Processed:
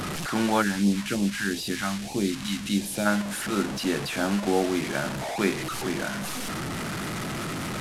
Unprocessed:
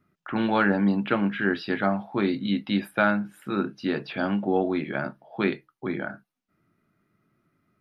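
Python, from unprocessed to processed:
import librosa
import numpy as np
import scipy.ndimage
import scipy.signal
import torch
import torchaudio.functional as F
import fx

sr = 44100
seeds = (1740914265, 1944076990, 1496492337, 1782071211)

y = fx.delta_mod(x, sr, bps=64000, step_db=-25.5)
y = fx.phaser_stages(y, sr, stages=2, low_hz=440.0, high_hz=1400.0, hz=fx.line((0.61, 3.8), (3.05, 0.98)), feedback_pct=25, at=(0.61, 3.05), fade=0.02)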